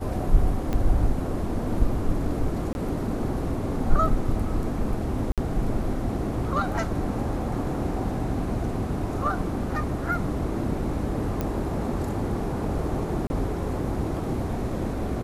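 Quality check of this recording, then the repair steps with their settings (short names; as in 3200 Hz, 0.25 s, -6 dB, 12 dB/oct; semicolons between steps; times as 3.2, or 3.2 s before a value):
0.73 pop -15 dBFS
2.73–2.75 gap 21 ms
5.32–5.38 gap 57 ms
11.41 pop -14 dBFS
13.27–13.3 gap 30 ms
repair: de-click; interpolate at 2.73, 21 ms; interpolate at 5.32, 57 ms; interpolate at 13.27, 30 ms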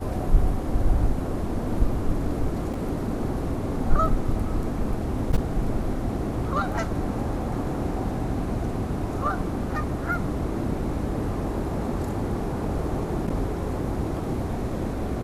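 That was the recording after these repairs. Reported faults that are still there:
0.73 pop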